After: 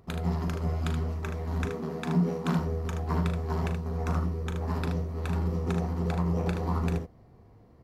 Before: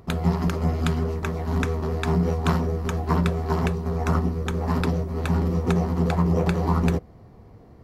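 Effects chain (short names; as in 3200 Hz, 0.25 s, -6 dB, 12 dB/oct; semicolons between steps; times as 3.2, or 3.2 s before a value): 1.65–2.59 resonant low shelf 130 Hz -12 dB, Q 3; early reflections 39 ms -9 dB, 76 ms -7 dB; gain -8.5 dB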